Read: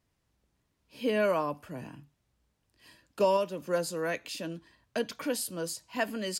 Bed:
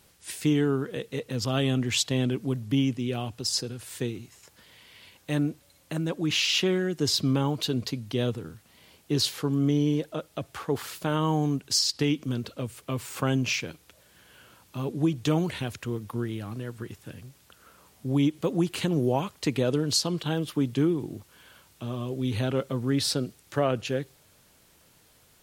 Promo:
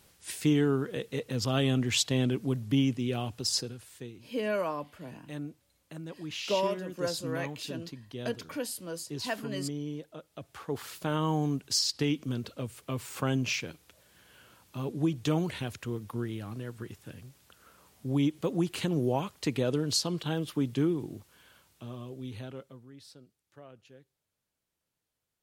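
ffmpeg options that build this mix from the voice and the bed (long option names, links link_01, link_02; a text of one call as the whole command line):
ffmpeg -i stem1.wav -i stem2.wav -filter_complex "[0:a]adelay=3300,volume=-3.5dB[link_01];[1:a]volume=7.5dB,afade=type=out:start_time=3.54:duration=0.38:silence=0.281838,afade=type=in:start_time=10.25:duration=0.85:silence=0.354813,afade=type=out:start_time=21:duration=1.9:silence=0.0749894[link_02];[link_01][link_02]amix=inputs=2:normalize=0" out.wav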